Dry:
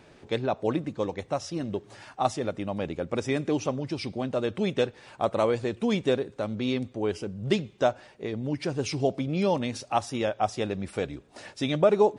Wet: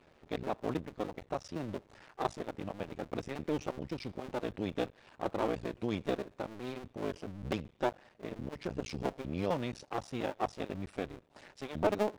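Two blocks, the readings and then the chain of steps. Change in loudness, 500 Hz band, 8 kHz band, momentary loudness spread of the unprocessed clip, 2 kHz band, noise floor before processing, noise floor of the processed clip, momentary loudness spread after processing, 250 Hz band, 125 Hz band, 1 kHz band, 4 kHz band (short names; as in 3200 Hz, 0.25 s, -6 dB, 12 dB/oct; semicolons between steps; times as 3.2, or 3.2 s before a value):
-9.5 dB, -10.0 dB, -12.5 dB, 7 LU, -8.0 dB, -55 dBFS, -64 dBFS, 8 LU, -9.0 dB, -9.5 dB, -8.0 dB, -11.0 dB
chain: cycle switcher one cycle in 2, muted; high shelf 6500 Hz -11.5 dB; gain -6 dB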